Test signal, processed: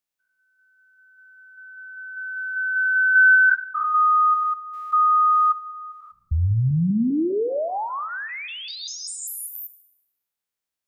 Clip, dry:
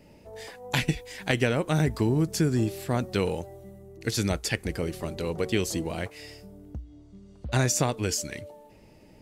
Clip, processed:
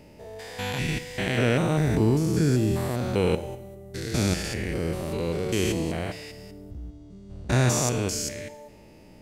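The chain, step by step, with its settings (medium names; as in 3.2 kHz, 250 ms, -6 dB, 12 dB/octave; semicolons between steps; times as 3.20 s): spectrogram pixelated in time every 200 ms; Schroeder reverb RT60 0.88 s, combs from 32 ms, DRR 13.5 dB; trim +5 dB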